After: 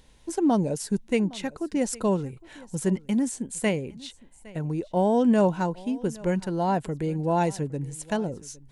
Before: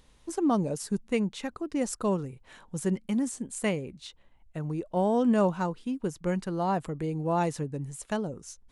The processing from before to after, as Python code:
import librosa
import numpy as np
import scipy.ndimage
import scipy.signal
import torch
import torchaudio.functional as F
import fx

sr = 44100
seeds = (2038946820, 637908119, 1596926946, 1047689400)

p1 = fx.notch(x, sr, hz=1200.0, q=5.1)
p2 = p1 + fx.echo_single(p1, sr, ms=811, db=-21.5, dry=0)
y = F.gain(torch.from_numpy(p2), 3.5).numpy()